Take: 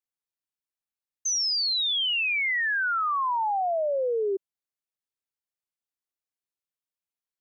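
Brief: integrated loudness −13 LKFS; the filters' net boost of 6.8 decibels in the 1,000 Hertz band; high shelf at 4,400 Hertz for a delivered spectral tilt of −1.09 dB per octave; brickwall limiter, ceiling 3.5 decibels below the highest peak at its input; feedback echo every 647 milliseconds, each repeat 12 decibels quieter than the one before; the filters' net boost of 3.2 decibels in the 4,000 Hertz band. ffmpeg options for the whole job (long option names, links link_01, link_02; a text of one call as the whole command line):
ffmpeg -i in.wav -af "equalizer=frequency=1000:width_type=o:gain=8.5,equalizer=frequency=4000:width_type=o:gain=6,highshelf=frequency=4400:gain=-4.5,alimiter=limit=-18dB:level=0:latency=1,aecho=1:1:647|1294|1941:0.251|0.0628|0.0157,volume=8.5dB" out.wav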